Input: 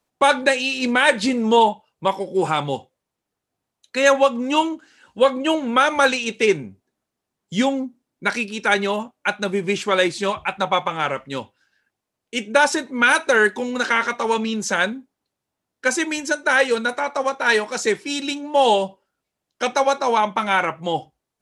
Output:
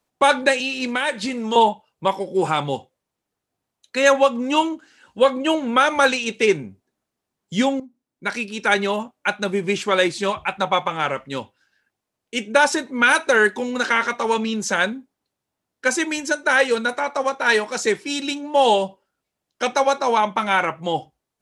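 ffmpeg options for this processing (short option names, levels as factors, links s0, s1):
-filter_complex "[0:a]asettb=1/sr,asplit=3[s0][s1][s2];[s0]atrim=end=0.604[s3];[s1]atrim=start=0.6:end=1.56,asetpts=PTS-STARTPTS,afade=t=in:d=0.004:c=qsin,afade=t=out:st=0.956:d=0.004:c=qsin,acrossover=split=950|2300[s4][s5][s6];[s4]acompressor=threshold=0.0562:ratio=4[s7];[s5]acompressor=threshold=0.0447:ratio=4[s8];[s6]acompressor=threshold=0.0398:ratio=4[s9];[s7][s8][s9]amix=inputs=3:normalize=0[s10];[s2]atrim=start=1.556[s11];[s3][s10]acrossfade=d=0.004:c1=hsin:c2=qsin[s12];[s12][s11]acrossfade=d=0.004:c1=qsin:c2=hsin,asplit=2[s13][s14];[s13]atrim=end=7.8,asetpts=PTS-STARTPTS,afade=t=out:st=7.796:d=0.004:c=hsin:silence=0.199526[s15];[s14]atrim=start=7.8,asetpts=PTS-STARTPTS,afade=t=in:d=0.85:silence=0.199526[s16];[s15][s16]concat=n=2:v=0:a=1"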